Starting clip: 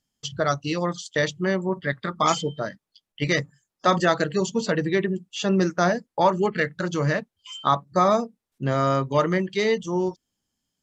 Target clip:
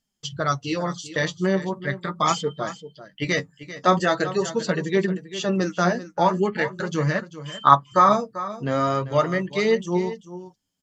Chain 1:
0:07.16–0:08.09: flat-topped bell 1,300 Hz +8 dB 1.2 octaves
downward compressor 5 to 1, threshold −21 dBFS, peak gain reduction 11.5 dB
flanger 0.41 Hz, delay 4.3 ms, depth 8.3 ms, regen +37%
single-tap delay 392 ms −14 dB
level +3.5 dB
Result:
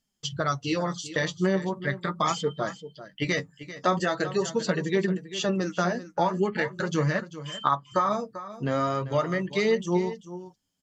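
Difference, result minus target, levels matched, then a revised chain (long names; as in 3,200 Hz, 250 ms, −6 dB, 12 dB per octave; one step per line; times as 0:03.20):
downward compressor: peak gain reduction +11.5 dB
0:07.16–0:08.09: flat-topped bell 1,300 Hz +8 dB 1.2 octaves
flanger 0.41 Hz, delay 4.3 ms, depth 8.3 ms, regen +37%
single-tap delay 392 ms −14 dB
level +3.5 dB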